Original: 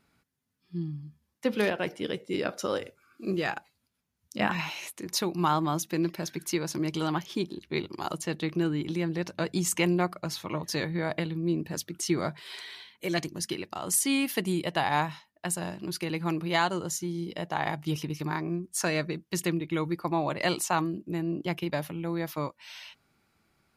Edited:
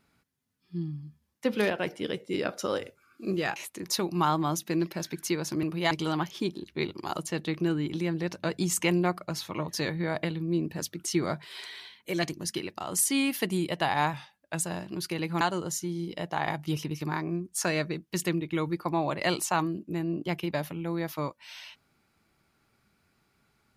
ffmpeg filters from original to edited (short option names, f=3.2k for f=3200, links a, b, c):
-filter_complex "[0:a]asplit=7[a][b][c][d][e][f][g];[a]atrim=end=3.562[h];[b]atrim=start=4.788:end=6.862[i];[c]atrim=start=16.318:end=16.602[j];[d]atrim=start=6.858:end=15.084[k];[e]atrim=start=15.08:end=15.53,asetpts=PTS-STARTPTS,asetrate=40572,aresample=44100[l];[f]atrim=start=15.526:end=16.322[m];[g]atrim=start=16.598[n];[h][i]acrossfade=d=0.004:c1=hsin:c2=hsin[o];[o][j]acrossfade=d=0.004:c1=hsin:c2=hsin[p];[p][k]acrossfade=d=0.004:c1=hsin:c2=hsin[q];[q][l]acrossfade=d=0.004:c1=hsin:c2=hsin[r];[r][m]acrossfade=d=0.004:c1=hsin:c2=hsin[s];[s][n]acrossfade=d=0.004:c1=hsin:c2=hsin"